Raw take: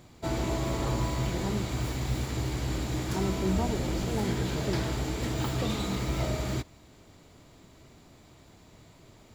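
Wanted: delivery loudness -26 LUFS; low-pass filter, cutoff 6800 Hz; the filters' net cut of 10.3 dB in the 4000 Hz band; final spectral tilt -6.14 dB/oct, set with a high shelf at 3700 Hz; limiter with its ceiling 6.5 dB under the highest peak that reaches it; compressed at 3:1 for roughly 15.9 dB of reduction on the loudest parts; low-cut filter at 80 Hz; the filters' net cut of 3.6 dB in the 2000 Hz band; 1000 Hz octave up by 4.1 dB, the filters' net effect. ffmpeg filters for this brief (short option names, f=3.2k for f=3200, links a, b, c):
-af "highpass=80,lowpass=6.8k,equalizer=f=1k:t=o:g=6.5,equalizer=f=2k:t=o:g=-3,highshelf=f=3.7k:g=-7,equalizer=f=4k:t=o:g=-7.5,acompressor=threshold=-47dB:ratio=3,volume=22.5dB,alimiter=limit=-15.5dB:level=0:latency=1"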